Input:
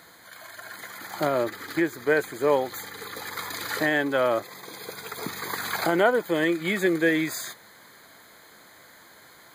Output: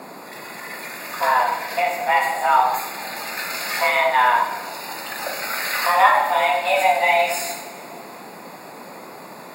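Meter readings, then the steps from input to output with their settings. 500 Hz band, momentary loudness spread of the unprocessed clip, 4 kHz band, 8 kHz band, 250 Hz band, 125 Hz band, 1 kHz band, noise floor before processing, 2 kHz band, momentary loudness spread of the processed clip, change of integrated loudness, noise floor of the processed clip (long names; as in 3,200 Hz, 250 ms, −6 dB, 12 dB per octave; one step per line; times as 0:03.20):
+1.0 dB, 17 LU, +7.0 dB, +6.5 dB, −12.5 dB, can't be measured, +14.5 dB, −52 dBFS, +6.5 dB, 22 LU, +6.0 dB, −39 dBFS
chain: coupled-rooms reverb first 0.77 s, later 2.9 s, from −18 dB, DRR −2 dB
frequency shifter +370 Hz
noise in a band 160–1,100 Hz −42 dBFS
level +2.5 dB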